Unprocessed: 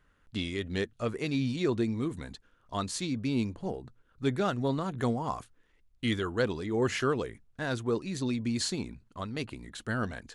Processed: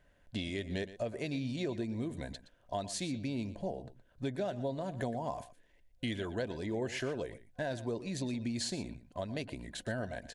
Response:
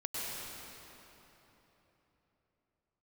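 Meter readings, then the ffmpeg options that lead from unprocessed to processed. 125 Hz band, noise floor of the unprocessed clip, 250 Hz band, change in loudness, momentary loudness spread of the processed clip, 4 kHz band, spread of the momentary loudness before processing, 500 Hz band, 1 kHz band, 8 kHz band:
-6.0 dB, -68 dBFS, -6.0 dB, -6.0 dB, 7 LU, -5.0 dB, 11 LU, -5.0 dB, -6.5 dB, -4.0 dB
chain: -filter_complex "[0:a]superequalizer=8b=2.82:10b=0.316,acompressor=threshold=0.02:ratio=4,asplit=2[s0][s1];[s1]aecho=0:1:119:0.178[s2];[s0][s2]amix=inputs=2:normalize=0"

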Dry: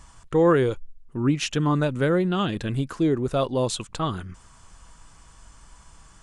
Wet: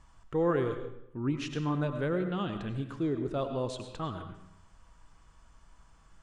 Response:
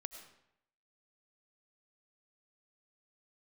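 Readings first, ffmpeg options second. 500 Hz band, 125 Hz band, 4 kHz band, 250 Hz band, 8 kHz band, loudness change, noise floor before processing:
-9.0 dB, -8.5 dB, -12.0 dB, -8.5 dB, -17.0 dB, -9.0 dB, -52 dBFS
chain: -filter_complex "[0:a]aemphasis=mode=reproduction:type=50fm[s0];[1:a]atrim=start_sample=2205[s1];[s0][s1]afir=irnorm=-1:irlink=0,volume=0.531"

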